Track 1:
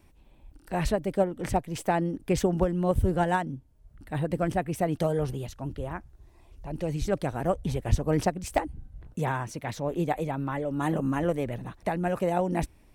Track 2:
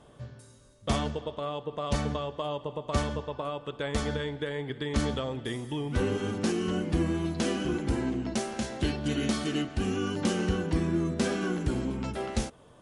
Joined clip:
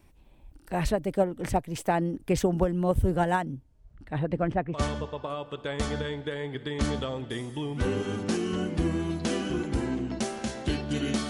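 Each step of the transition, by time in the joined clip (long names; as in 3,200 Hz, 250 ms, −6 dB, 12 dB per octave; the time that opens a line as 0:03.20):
track 1
0:03.62–0:04.82: low-pass filter 10,000 Hz → 1,700 Hz
0:04.75: continue with track 2 from 0:02.90, crossfade 0.14 s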